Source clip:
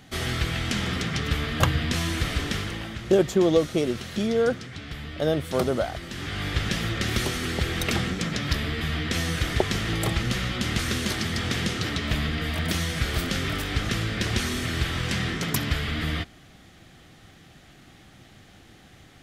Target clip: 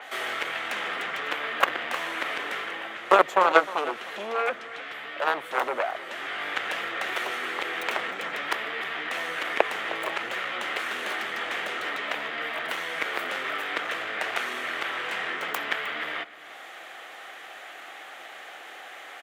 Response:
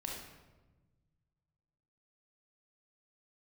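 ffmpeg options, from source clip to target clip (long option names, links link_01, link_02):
-filter_complex "[0:a]acrossover=split=370[link_01][link_02];[link_02]acompressor=mode=upward:threshold=-35dB:ratio=2.5[link_03];[link_01][link_03]amix=inputs=2:normalize=0,aeval=exprs='0.668*(cos(1*acos(clip(val(0)/0.668,-1,1)))-cos(1*PI/2))+0.15*(cos(7*acos(clip(val(0)/0.668,-1,1)))-cos(7*PI/2))':channel_layout=same,asplit=2[link_04][link_05];[link_05]aecho=0:1:309:0.141[link_06];[link_04][link_06]amix=inputs=2:normalize=0,aexciter=amount=2.5:drive=7.7:freq=6600,highpass=270,acrossover=split=470 3100:gain=0.0794 1 0.0891[link_07][link_08][link_09];[link_07][link_08][link_09]amix=inputs=3:normalize=0,alimiter=level_in=13dB:limit=-1dB:release=50:level=0:latency=1,adynamicequalizer=threshold=0.00891:dfrequency=4300:dqfactor=0.7:tfrequency=4300:tqfactor=0.7:attack=5:release=100:ratio=0.375:range=3:mode=cutabove:tftype=highshelf,volume=-2.5dB"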